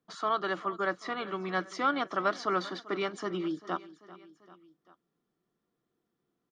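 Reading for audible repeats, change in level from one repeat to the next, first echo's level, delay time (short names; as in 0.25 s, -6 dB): 3, -4.5 dB, -18.5 dB, 0.392 s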